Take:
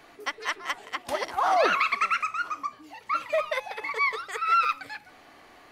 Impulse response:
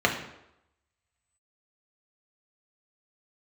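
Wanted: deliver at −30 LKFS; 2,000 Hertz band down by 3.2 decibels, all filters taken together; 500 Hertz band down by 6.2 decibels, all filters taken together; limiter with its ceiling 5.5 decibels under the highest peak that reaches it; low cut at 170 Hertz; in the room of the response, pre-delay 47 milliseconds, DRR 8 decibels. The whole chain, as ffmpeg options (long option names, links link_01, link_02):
-filter_complex "[0:a]highpass=170,equalizer=frequency=500:width_type=o:gain=-8.5,equalizer=frequency=2000:width_type=o:gain=-3.5,alimiter=limit=-20dB:level=0:latency=1,asplit=2[link_01][link_02];[1:a]atrim=start_sample=2205,adelay=47[link_03];[link_02][link_03]afir=irnorm=-1:irlink=0,volume=-23.5dB[link_04];[link_01][link_04]amix=inputs=2:normalize=0,volume=0.5dB"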